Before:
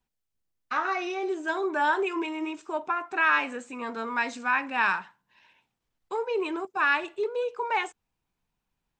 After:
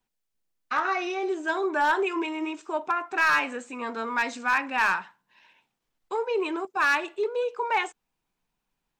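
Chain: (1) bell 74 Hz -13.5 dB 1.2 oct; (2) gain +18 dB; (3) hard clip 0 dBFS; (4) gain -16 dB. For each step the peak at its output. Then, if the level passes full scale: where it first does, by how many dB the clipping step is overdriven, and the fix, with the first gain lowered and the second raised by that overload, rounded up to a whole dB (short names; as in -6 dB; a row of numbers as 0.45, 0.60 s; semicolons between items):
-12.0, +6.0, 0.0, -16.0 dBFS; step 2, 6.0 dB; step 2 +12 dB, step 4 -10 dB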